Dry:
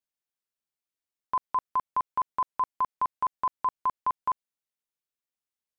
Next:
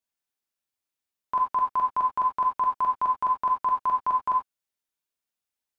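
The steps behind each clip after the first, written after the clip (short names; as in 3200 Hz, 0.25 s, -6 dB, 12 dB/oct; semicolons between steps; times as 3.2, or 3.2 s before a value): non-linear reverb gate 0.11 s flat, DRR 0 dB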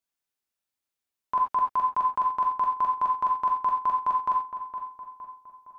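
darkening echo 0.463 s, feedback 51%, low-pass 2000 Hz, level -9 dB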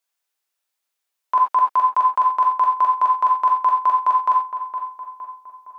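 HPF 510 Hz 12 dB/oct; gain +8 dB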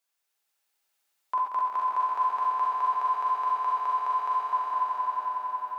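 limiter -19.5 dBFS, peak gain reduction 11 dB; on a send: swelling echo 91 ms, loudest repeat 5, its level -5.5 dB; on the sum: gain -1.5 dB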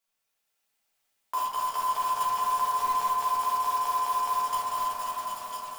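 block floating point 3-bit; shoebox room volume 170 m³, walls furnished, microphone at 1.6 m; gain -3 dB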